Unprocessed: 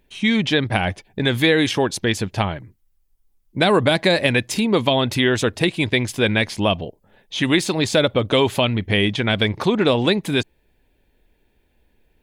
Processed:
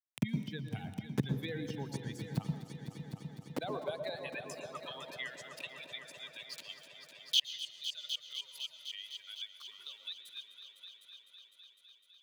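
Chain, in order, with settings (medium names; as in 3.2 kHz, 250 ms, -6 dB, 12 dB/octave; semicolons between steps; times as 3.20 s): expander on every frequency bin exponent 2; vibrato 6.2 Hz 24 cents; small samples zeroed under -43 dBFS; inverted gate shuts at -25 dBFS, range -33 dB; high-pass sweep 120 Hz -> 3.8 kHz, 2.04–5.97 s; multi-head delay 253 ms, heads all three, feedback 54%, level -16 dB; on a send at -8 dB: reverberation RT60 0.55 s, pre-delay 110 ms; on the sum: three bands compressed up and down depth 40%; trim +11 dB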